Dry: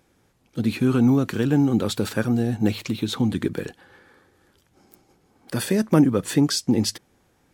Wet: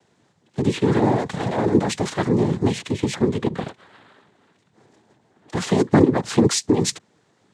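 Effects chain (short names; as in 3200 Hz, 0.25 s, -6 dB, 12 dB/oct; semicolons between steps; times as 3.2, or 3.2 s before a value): 0.99–1.65 minimum comb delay 1.4 ms; 2.81–5.62 bell 5300 Hz -6 dB 0.75 oct; noise vocoder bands 6; gain +2.5 dB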